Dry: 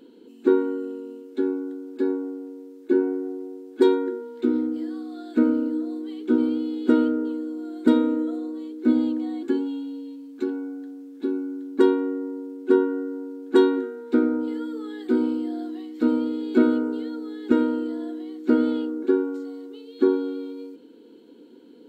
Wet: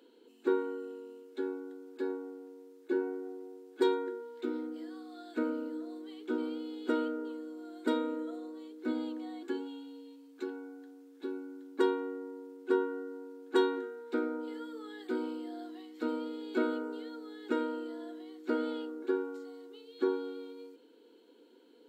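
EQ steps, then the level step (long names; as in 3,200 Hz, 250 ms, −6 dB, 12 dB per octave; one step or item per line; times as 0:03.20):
high-pass filter 480 Hz 12 dB per octave
−5.0 dB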